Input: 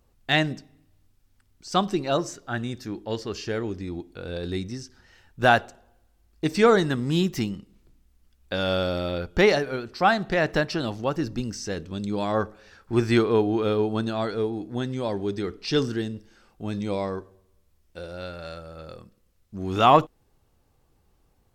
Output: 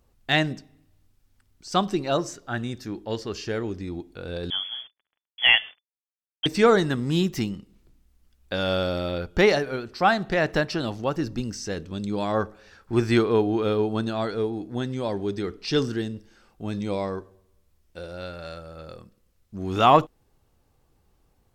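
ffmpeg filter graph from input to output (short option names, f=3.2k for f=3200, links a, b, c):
-filter_complex "[0:a]asettb=1/sr,asplit=3[a][b][c];[a]atrim=end=4.504[d];[b]atrim=start=4.5:end=6.46,asetpts=PTS-STARTPTS,afade=t=in:d=0.004:c=qsin,afade=t=out:st=1.956:d=0.004:c=qsin,bandreject=f=251.2:t=h:w=4,bandreject=f=502.4:t=h:w=4,bandreject=f=753.6:t=h:w=4,bandreject=f=1.0048k:t=h:w=4,bandreject=f=1.256k:t=h:w=4,bandreject=f=1.5072k:t=h:w=4,bandreject=f=1.7584k:t=h:w=4,bandreject=f=2.0096k:t=h:w=4,acrusher=bits=6:mix=0:aa=0.5,lowpass=f=3k:t=q:w=0.5098,lowpass=f=3k:t=q:w=0.6013,lowpass=f=3k:t=q:w=0.9,lowpass=f=3k:t=q:w=2.563,afreqshift=-3500[e];[c]atrim=start=6.456[f];[d][e]acrossfade=d=0.004:c1=hsin:c2=qsin[g];[g][f]acrossfade=d=0.004:c1=qsin:c2=hsin"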